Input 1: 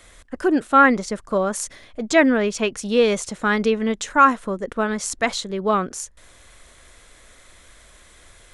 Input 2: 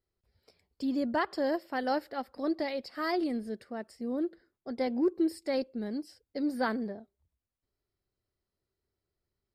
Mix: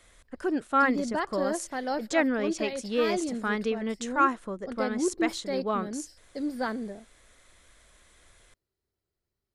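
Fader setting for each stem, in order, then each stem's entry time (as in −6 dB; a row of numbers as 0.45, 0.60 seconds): −9.5, −0.5 decibels; 0.00, 0.00 seconds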